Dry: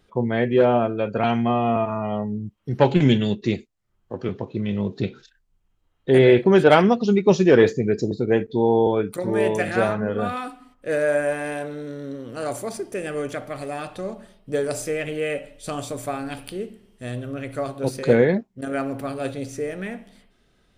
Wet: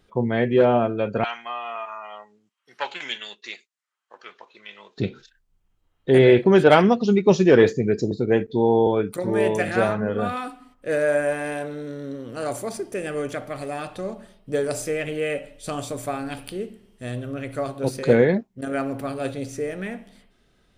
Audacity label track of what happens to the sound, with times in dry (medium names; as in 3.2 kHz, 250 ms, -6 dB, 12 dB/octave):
1.240000	4.980000	Chebyshev band-pass 1.3–9.5 kHz